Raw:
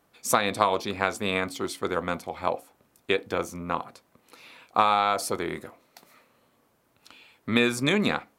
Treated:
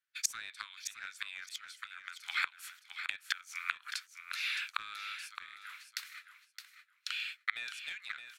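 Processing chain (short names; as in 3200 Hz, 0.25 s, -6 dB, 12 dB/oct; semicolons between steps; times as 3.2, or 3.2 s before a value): gate -55 dBFS, range -32 dB; elliptic high-pass 1500 Hz, stop band 60 dB; overdrive pedal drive 13 dB, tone 4100 Hz, clips at -10.5 dBFS; flipped gate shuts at -23 dBFS, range -28 dB; on a send: feedback echo 0.616 s, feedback 19%, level -9 dB; on the sum: gain +8.5 dB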